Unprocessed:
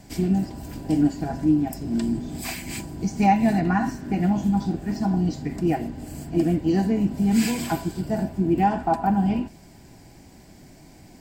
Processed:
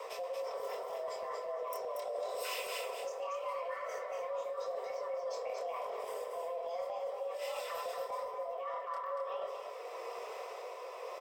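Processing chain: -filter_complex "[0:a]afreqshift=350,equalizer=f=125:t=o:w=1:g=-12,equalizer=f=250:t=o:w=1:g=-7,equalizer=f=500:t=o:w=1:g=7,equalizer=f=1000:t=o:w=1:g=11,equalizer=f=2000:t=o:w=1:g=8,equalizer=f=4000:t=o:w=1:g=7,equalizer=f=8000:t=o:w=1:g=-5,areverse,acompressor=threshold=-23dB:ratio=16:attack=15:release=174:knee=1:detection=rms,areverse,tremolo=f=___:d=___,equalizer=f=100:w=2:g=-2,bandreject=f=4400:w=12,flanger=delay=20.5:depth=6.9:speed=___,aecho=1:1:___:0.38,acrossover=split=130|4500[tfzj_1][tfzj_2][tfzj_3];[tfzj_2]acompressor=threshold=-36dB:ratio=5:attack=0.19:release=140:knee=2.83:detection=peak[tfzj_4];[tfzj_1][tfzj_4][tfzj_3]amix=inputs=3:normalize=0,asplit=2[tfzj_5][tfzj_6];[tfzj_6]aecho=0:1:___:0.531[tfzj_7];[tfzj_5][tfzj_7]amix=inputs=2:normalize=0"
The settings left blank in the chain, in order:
0.88, 0.46, 0.83, 4, 234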